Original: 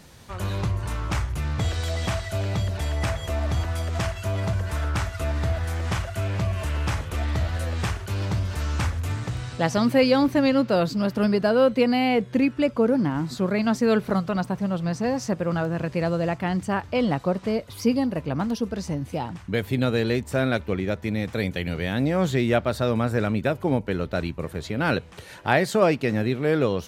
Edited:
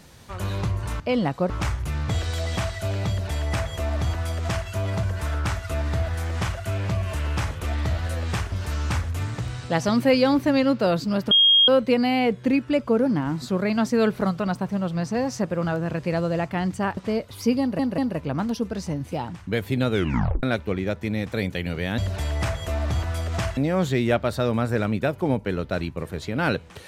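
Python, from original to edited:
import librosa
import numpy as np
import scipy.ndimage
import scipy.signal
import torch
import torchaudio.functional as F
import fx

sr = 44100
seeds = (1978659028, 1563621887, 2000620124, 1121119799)

y = fx.edit(x, sr, fx.duplicate(start_s=2.59, length_s=1.59, to_s=21.99),
    fx.cut(start_s=8.02, length_s=0.39),
    fx.bleep(start_s=11.2, length_s=0.37, hz=3250.0, db=-12.5),
    fx.move(start_s=16.86, length_s=0.5, to_s=1.0),
    fx.stutter(start_s=17.99, slice_s=0.19, count=3),
    fx.tape_stop(start_s=19.92, length_s=0.52), tone=tone)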